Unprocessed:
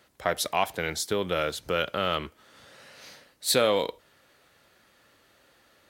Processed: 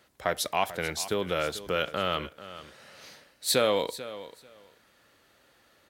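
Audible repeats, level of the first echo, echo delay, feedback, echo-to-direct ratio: 2, -15.0 dB, 0.44 s, 17%, -15.0 dB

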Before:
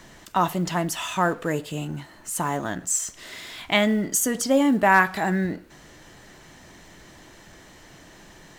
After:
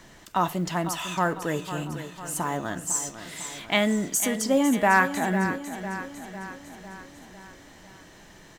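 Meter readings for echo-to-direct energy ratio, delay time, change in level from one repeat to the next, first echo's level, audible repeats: -9.5 dB, 0.501 s, -5.0 dB, -11.0 dB, 5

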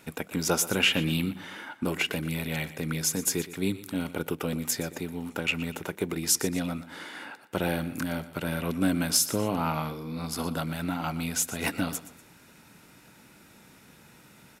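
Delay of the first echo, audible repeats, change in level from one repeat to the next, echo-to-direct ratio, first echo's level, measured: 0.12 s, 2, -8.5 dB, -15.0 dB, -15.5 dB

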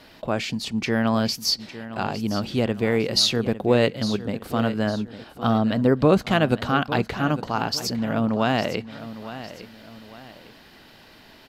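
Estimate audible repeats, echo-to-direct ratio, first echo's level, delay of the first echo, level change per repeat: 2, -13.5 dB, -14.0 dB, 0.856 s, -8.0 dB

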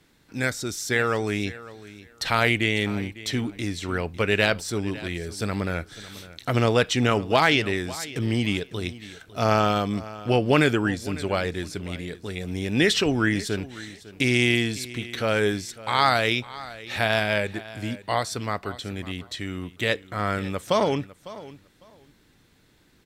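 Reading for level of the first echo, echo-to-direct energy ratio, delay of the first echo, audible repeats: -17.5 dB, -17.5 dB, 0.552 s, 2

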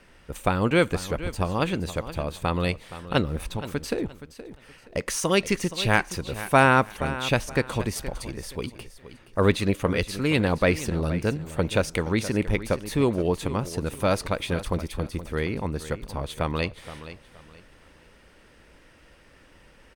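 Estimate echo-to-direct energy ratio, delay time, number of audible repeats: -13.5 dB, 0.472 s, 2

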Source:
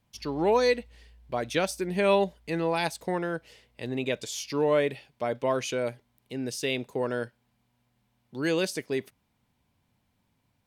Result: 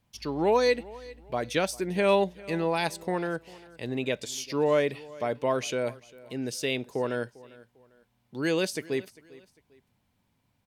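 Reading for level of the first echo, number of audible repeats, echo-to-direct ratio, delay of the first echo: -21.0 dB, 2, -20.5 dB, 0.399 s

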